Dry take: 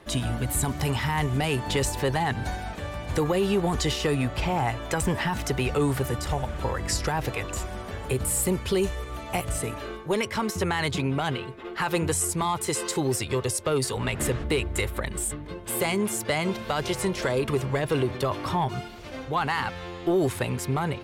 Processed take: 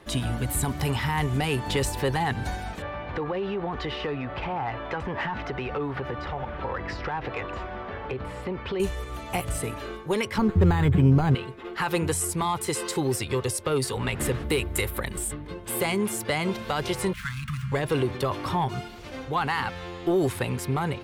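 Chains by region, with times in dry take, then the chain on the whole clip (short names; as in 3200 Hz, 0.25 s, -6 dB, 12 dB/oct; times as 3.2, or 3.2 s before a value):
2.82–8.8 air absorption 290 m + compressor, threshold -26 dBFS + overdrive pedal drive 12 dB, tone 2200 Hz, clips at -18 dBFS
10.38–11.35 RIAA curve playback + decimation joined by straight lines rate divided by 8×
14.34–15.18 HPF 50 Hz + bell 14000 Hz +11 dB 0.93 oct
17.13–17.72 median filter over 9 samples + elliptic band-stop 180–1300 Hz, stop band 60 dB
whole clip: notch 630 Hz, Q 14; dynamic EQ 6800 Hz, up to -4 dB, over -46 dBFS, Q 2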